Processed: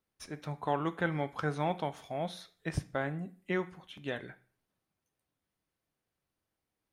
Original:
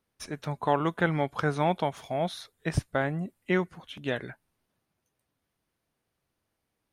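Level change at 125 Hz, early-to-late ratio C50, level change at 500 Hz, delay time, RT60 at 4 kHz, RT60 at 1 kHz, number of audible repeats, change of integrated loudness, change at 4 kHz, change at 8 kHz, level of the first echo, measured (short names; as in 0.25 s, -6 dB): -6.0 dB, 17.0 dB, -6.5 dB, none, 0.40 s, 0.45 s, none, -6.0 dB, -6.0 dB, -6.5 dB, none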